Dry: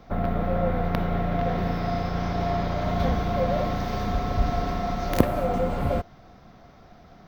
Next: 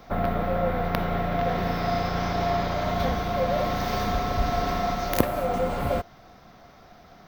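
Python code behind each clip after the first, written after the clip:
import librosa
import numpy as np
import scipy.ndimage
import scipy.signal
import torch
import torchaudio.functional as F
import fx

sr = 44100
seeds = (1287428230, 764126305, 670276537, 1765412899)

y = fx.high_shelf(x, sr, hz=9600.0, db=7.0)
y = fx.rider(y, sr, range_db=10, speed_s=0.5)
y = fx.low_shelf(y, sr, hz=400.0, db=-7.0)
y = y * librosa.db_to_amplitude(3.5)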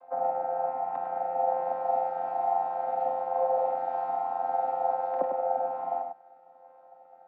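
y = fx.chord_vocoder(x, sr, chord='bare fifth', root=53)
y = fx.ladder_bandpass(y, sr, hz=750.0, resonance_pct=70)
y = y + 10.0 ** (-6.5 / 20.0) * np.pad(y, (int(101 * sr / 1000.0), 0))[:len(y)]
y = y * librosa.db_to_amplitude(6.5)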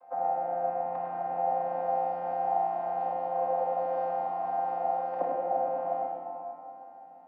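y = fx.room_shoebox(x, sr, seeds[0], volume_m3=150.0, walls='hard', distance_m=0.46)
y = y * librosa.db_to_amplitude(-2.5)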